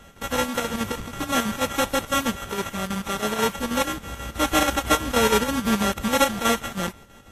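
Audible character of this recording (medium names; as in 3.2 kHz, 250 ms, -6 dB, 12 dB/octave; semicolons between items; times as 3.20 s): a buzz of ramps at a fixed pitch in blocks of 32 samples; chopped level 6.2 Hz, depth 60%, duty 70%; aliases and images of a low sample rate 4.7 kHz, jitter 0%; Vorbis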